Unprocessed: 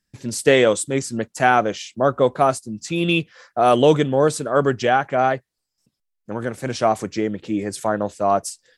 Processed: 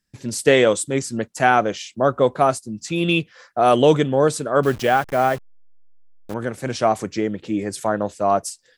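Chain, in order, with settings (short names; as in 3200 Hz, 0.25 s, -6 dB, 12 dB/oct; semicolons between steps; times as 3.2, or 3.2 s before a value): 4.63–6.34 level-crossing sampler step -32 dBFS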